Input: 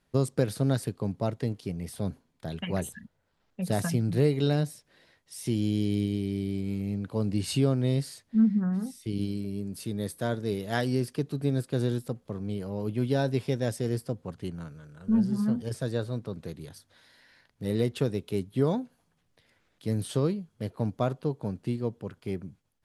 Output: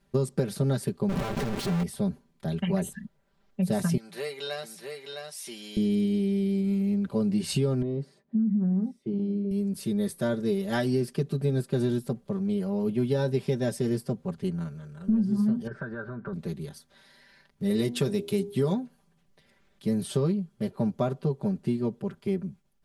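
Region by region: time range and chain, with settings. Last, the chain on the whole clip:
1.09–1.83 s: one-bit comparator + treble shelf 5.1 kHz -10.5 dB
3.97–5.77 s: high-pass 910 Hz + delay 660 ms -5 dB
7.82–9.51 s: compression, threshold -25 dBFS + band-pass filter 340 Hz, Q 0.73
15.67–16.33 s: compression 10:1, threshold -35 dBFS + resonant low-pass 1.5 kHz, resonance Q 12
17.70–18.74 s: treble shelf 2.4 kHz +8 dB + de-hum 81.04 Hz, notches 12
whole clip: bass shelf 470 Hz +5 dB; comb 5.1 ms, depth 94%; compression 6:1, threshold -20 dBFS; trim -1.5 dB

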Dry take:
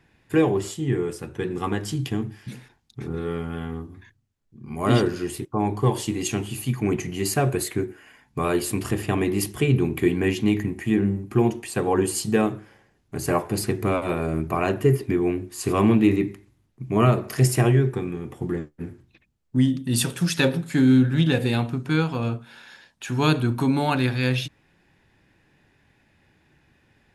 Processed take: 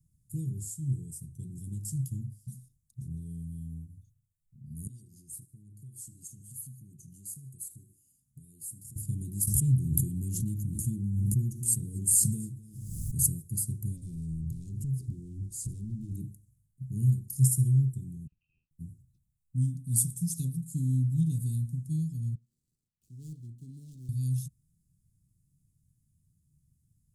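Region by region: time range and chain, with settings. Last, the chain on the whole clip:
4.87–8.96 s: compression 4:1, threshold -36 dBFS + bass shelf 95 Hz -11.5 dB + feedback delay 76 ms, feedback 47%, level -21 dB
9.47–13.40 s: delay 251 ms -20 dB + swell ahead of each attack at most 24 dB/s
13.97–16.15 s: compression 4:1, threshold -30 dBFS + waveshaping leveller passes 3 + distance through air 75 m
18.27–18.71 s: high-pass 770 Hz 6 dB/octave + frequency inversion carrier 2.9 kHz
22.35–24.09 s: median filter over 25 samples + three-band isolator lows -16 dB, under 370 Hz, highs -18 dB, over 5 kHz
whole clip: elliptic band-stop 150–8300 Hz, stop band 70 dB; tone controls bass -4 dB, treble +2 dB

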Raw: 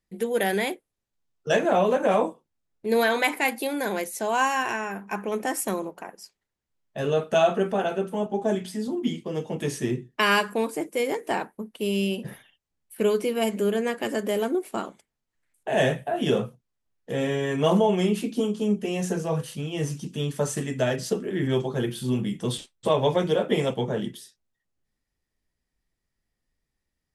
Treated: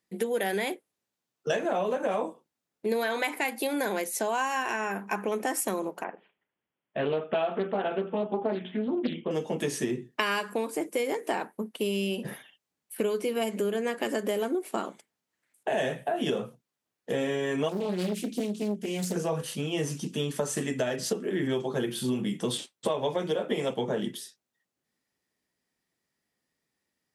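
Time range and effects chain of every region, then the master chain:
6.04–9.31 s: steep low-pass 3.4 kHz 96 dB/octave + delay 79 ms -22 dB + loudspeaker Doppler distortion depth 0.46 ms
17.69–19.16 s: high-pass 55 Hz 6 dB/octave + peaking EQ 1 kHz -14.5 dB 2.6 oct + loudspeaker Doppler distortion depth 0.98 ms
whole clip: high-pass 190 Hz 12 dB/octave; compression 6:1, threshold -29 dBFS; trim +3.5 dB

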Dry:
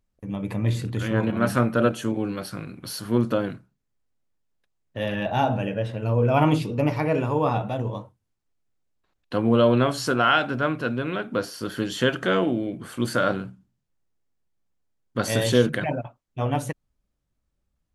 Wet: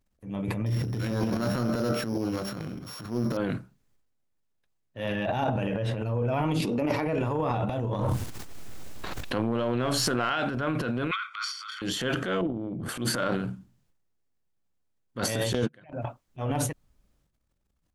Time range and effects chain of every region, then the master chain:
0.66–3.37 s: sorted samples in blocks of 8 samples + treble shelf 3.1 kHz -9 dB + de-hum 66.32 Hz, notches 34
6.60–7.06 s: resonant low shelf 170 Hz -8.5 dB, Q 1.5 + swell ahead of each attack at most 22 dB/s
7.99–10.30 s: partial rectifier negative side -3 dB + level flattener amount 100%
11.11–11.82 s: steep high-pass 1.1 kHz 96 dB/octave + distance through air 110 m + comb 0.9 ms, depth 81%
12.41–12.89 s: tilt shelf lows +9.5 dB, about 690 Hz + compression 10:1, threshold -28 dBFS
15.53–15.93 s: gate -21 dBFS, range -36 dB + low-pass 7.8 kHz
whole clip: compression, threshold -22 dBFS; transient shaper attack -8 dB, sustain +11 dB; trim -1.5 dB

